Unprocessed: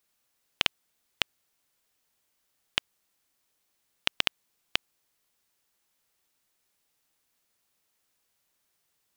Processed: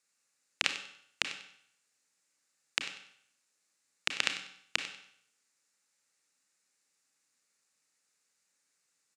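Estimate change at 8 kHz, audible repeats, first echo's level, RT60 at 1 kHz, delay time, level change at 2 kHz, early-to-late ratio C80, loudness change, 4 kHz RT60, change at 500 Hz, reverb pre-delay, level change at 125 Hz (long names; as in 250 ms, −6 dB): +3.0 dB, 1, −14.5 dB, 0.70 s, 96 ms, −1.0 dB, 10.0 dB, −4.0 dB, 0.65 s, −5.0 dB, 29 ms, −9.0 dB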